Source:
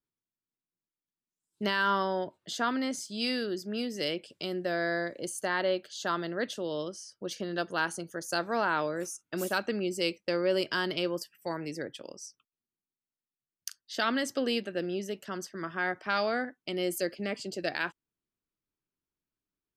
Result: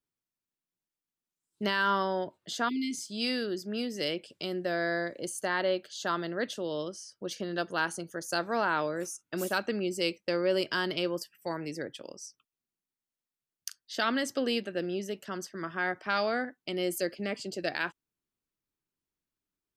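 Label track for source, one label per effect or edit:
2.690000	3.040000	spectral delete 450–2000 Hz

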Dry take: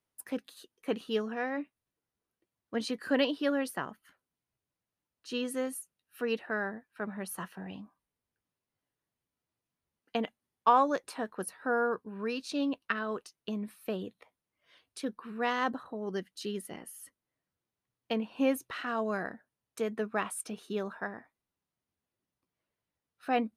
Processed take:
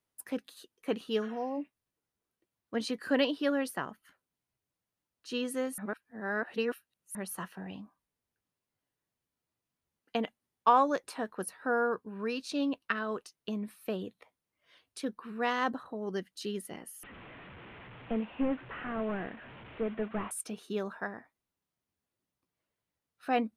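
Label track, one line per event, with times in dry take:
1.250000	1.620000	spectral repair 1100–4100 Hz
5.780000	7.150000	reverse
17.030000	20.310000	delta modulation 16 kbps, step -43.5 dBFS

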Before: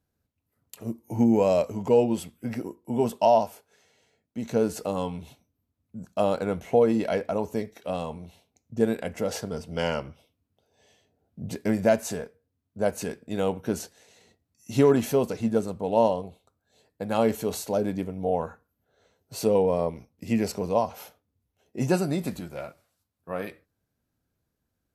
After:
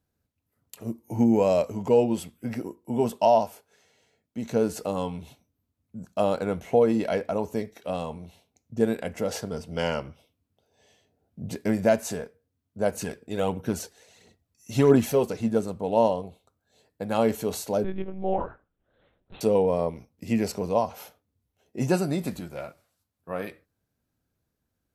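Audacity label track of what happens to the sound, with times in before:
12.940000	15.270000	phaser 1.5 Hz, delay 2.8 ms, feedback 43%
17.840000	19.410000	monotone LPC vocoder at 8 kHz 190 Hz

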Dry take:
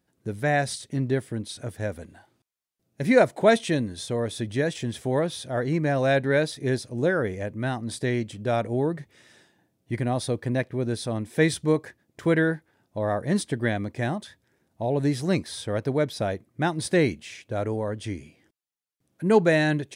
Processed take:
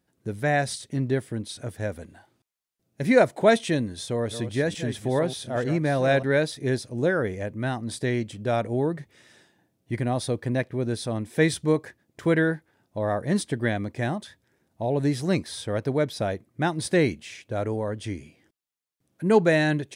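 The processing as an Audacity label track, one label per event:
3.850000	6.230000	reverse delay 0.448 s, level -10 dB

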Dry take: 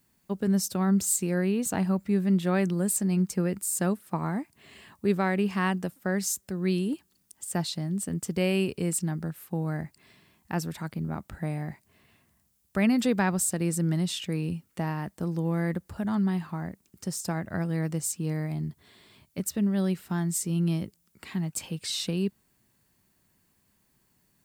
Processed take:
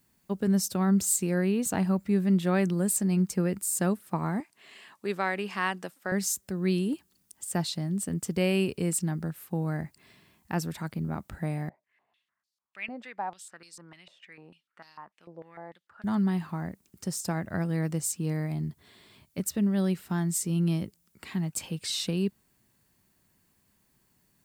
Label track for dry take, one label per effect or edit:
4.400000	6.120000	weighting filter A
11.690000	16.040000	stepped band-pass 6.7 Hz 600–4500 Hz

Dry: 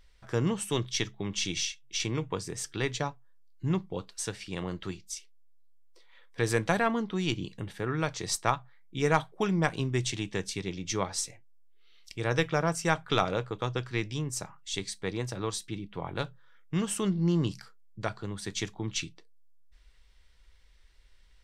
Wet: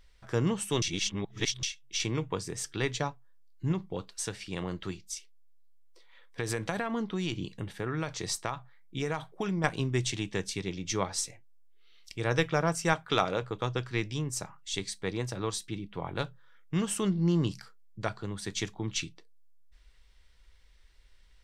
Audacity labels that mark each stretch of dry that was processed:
0.820000	1.630000	reverse
3.720000	9.640000	compressor, threshold -27 dBFS
12.930000	13.420000	low shelf 92 Hz -11 dB

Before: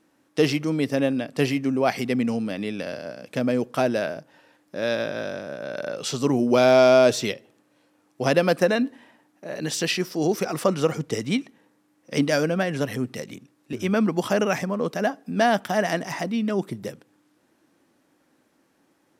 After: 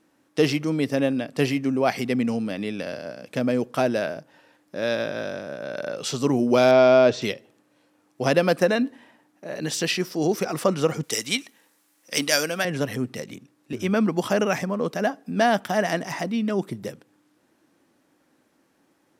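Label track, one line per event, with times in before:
6.710000	7.220000	Gaussian blur sigma 1.7 samples
11.030000	12.650000	tilt +4 dB/oct

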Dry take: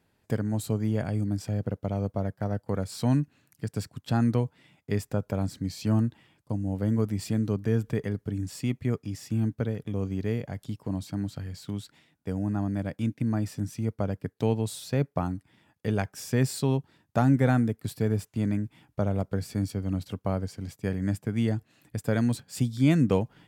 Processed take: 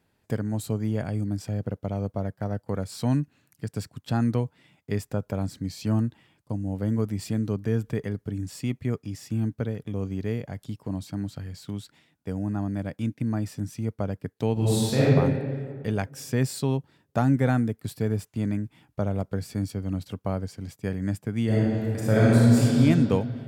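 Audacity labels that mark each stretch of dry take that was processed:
14.530000	15.140000	reverb throw, RT60 1.9 s, DRR -9.5 dB
21.450000	22.800000	reverb throw, RT60 2.7 s, DRR -8 dB

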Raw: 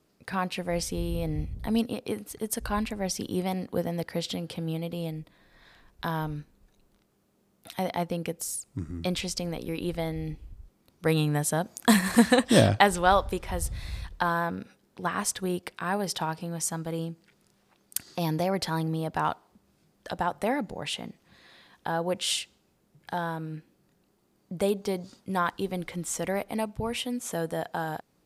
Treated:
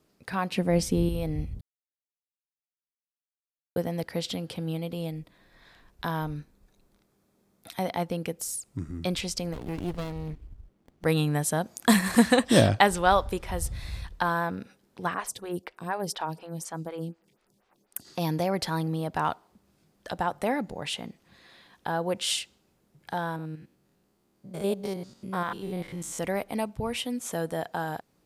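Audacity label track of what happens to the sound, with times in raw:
0.510000	1.090000	bell 220 Hz +9.5 dB 2.2 oct
1.610000	3.760000	mute
6.220000	7.860000	notch 2900 Hz
9.530000	11.050000	running maximum over 33 samples
15.140000	18.050000	photocell phaser 4.1 Hz
23.360000	26.190000	stepped spectrum every 0.1 s

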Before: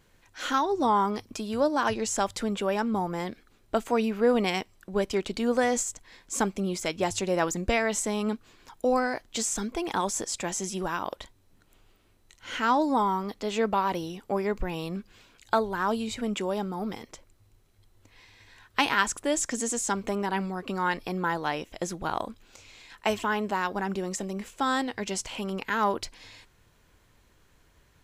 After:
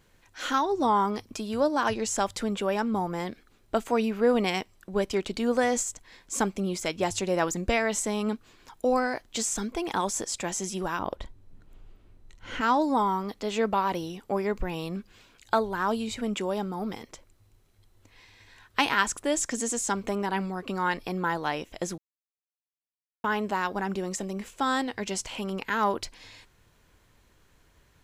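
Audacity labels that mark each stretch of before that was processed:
10.990000	12.610000	tilt -2.5 dB/oct
21.980000	23.240000	mute

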